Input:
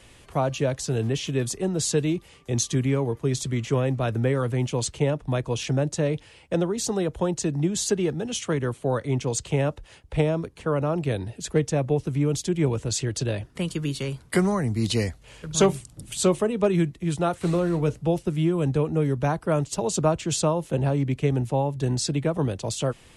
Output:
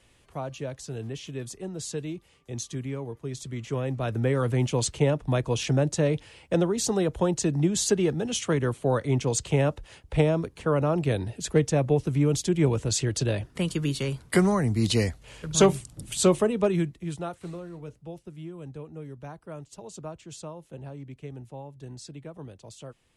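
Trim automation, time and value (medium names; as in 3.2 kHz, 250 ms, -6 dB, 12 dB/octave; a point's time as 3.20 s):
3.36 s -10 dB
4.51 s +0.5 dB
16.44 s +0.5 dB
17.12 s -7.5 dB
17.68 s -17 dB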